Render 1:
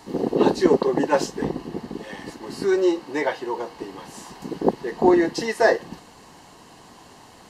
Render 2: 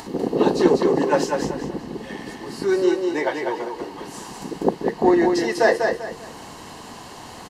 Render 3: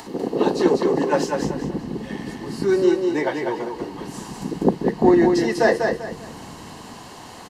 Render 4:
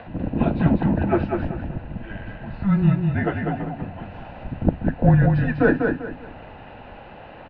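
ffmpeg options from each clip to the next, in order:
ffmpeg -i in.wav -filter_complex "[0:a]acompressor=mode=upward:threshold=-31dB:ratio=2.5,asplit=2[link_01][link_02];[link_02]aecho=0:1:196|392|588|784:0.596|0.179|0.0536|0.0161[link_03];[link_01][link_03]amix=inputs=2:normalize=0" out.wav
ffmpeg -i in.wav -filter_complex "[0:a]lowshelf=frequency=120:gain=-5.5,acrossover=split=240|2200[link_01][link_02][link_03];[link_01]dynaudnorm=framelen=410:gausssize=7:maxgain=11.5dB[link_04];[link_04][link_02][link_03]amix=inputs=3:normalize=0,volume=-1dB" out.wav
ffmpeg -i in.wav -af "highpass=frequency=230:width_type=q:width=0.5412,highpass=frequency=230:width_type=q:width=1.307,lowpass=frequency=3000:width_type=q:width=0.5176,lowpass=frequency=3000:width_type=q:width=0.7071,lowpass=frequency=3000:width_type=q:width=1.932,afreqshift=-200,bandreject=frequency=64.19:width_type=h:width=4,bandreject=frequency=128.38:width_type=h:width=4" out.wav

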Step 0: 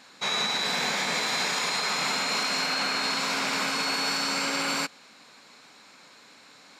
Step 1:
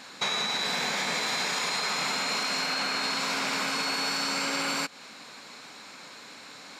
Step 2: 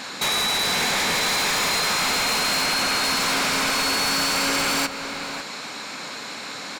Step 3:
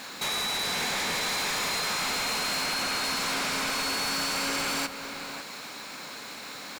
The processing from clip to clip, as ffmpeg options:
ffmpeg -i in.wav -af "acompressor=threshold=-33dB:ratio=6,volume=6.5dB" out.wav
ffmpeg -i in.wav -filter_complex "[0:a]asplit=2[link_01][link_02];[link_02]aeval=exprs='0.158*sin(PI/2*4.47*val(0)/0.158)':channel_layout=same,volume=-7.5dB[link_03];[link_01][link_03]amix=inputs=2:normalize=0,asplit=2[link_04][link_05];[link_05]adelay=553.9,volume=-8dB,highshelf=frequency=4000:gain=-12.5[link_06];[link_04][link_06]amix=inputs=2:normalize=0" out.wav
ffmpeg -i in.wav -af "acrusher=bits=5:mix=0:aa=0.5,volume=-7dB" out.wav

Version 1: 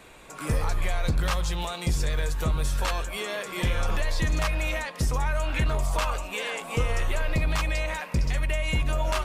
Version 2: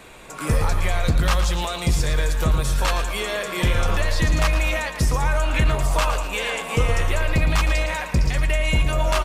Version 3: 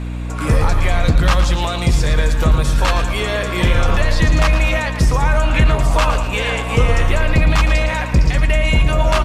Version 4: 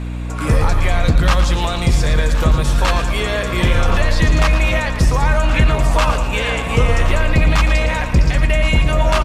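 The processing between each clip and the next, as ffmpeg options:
ffmpeg -i in.wav -af "aecho=1:1:113|226|339|452|565:0.316|0.139|0.0612|0.0269|0.0119,volume=5.5dB" out.wav
ffmpeg -i in.wav -af "highshelf=frequency=8400:gain=-11,aeval=exprs='val(0)+0.0398*(sin(2*PI*60*n/s)+sin(2*PI*2*60*n/s)/2+sin(2*PI*3*60*n/s)/3+sin(2*PI*4*60*n/s)/4+sin(2*PI*5*60*n/s)/5)':channel_layout=same,volume=5.5dB" out.wav
ffmpeg -i in.wav -af "aecho=1:1:1071:0.211" out.wav

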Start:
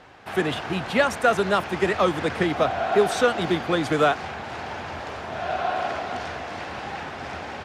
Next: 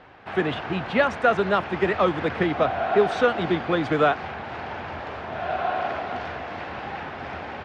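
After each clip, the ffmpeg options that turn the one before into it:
ffmpeg -i in.wav -af "lowpass=3200" out.wav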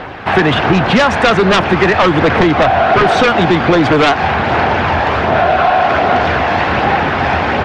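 ffmpeg -i in.wav -af "aphaser=in_gain=1:out_gain=1:delay=1.2:decay=0.24:speed=1.3:type=sinusoidal,aeval=exprs='0.473*sin(PI/2*3.16*val(0)/0.473)':channel_layout=same,acompressor=threshold=-15dB:ratio=6,volume=7dB" out.wav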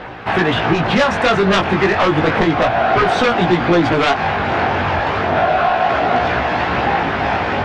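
ffmpeg -i in.wav -af "flanger=delay=16.5:depth=4.1:speed=0.31,volume=-1dB" out.wav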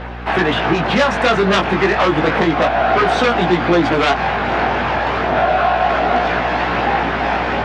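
ffmpeg -i in.wav -af "highpass=160,aeval=exprs='val(0)+0.0355*(sin(2*PI*60*n/s)+sin(2*PI*2*60*n/s)/2+sin(2*PI*3*60*n/s)/3+sin(2*PI*4*60*n/s)/4+sin(2*PI*5*60*n/s)/5)':channel_layout=same" out.wav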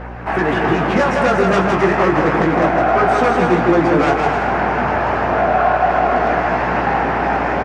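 ffmpeg -i in.wav -filter_complex "[0:a]equalizer=frequency=3600:width_type=o:width=0.94:gain=-13,asplit=2[link_01][link_02];[link_02]aecho=0:1:160|264|331.6|375.5|404.1:0.631|0.398|0.251|0.158|0.1[link_03];[link_01][link_03]amix=inputs=2:normalize=0,volume=-1dB" out.wav

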